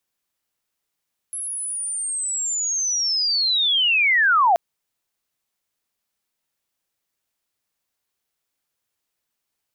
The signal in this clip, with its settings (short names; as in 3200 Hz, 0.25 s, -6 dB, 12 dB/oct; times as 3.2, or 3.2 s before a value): chirp linear 11000 Hz -> 650 Hz -26.5 dBFS -> -12.5 dBFS 3.23 s